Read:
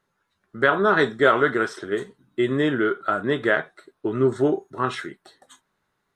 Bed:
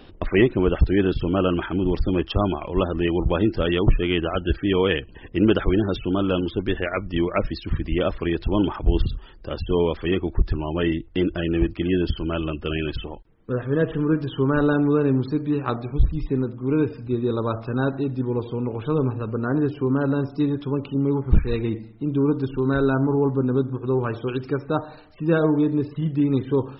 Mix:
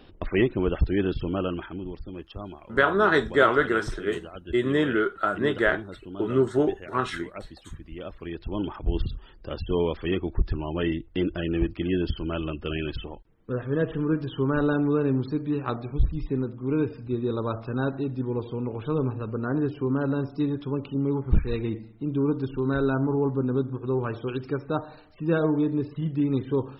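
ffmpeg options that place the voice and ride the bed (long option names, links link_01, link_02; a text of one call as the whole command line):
ffmpeg -i stem1.wav -i stem2.wav -filter_complex "[0:a]adelay=2150,volume=-2dB[link_01];[1:a]volume=7.5dB,afade=type=out:start_time=1.19:duration=0.79:silence=0.266073,afade=type=in:start_time=7.97:duration=1.42:silence=0.237137[link_02];[link_01][link_02]amix=inputs=2:normalize=0" out.wav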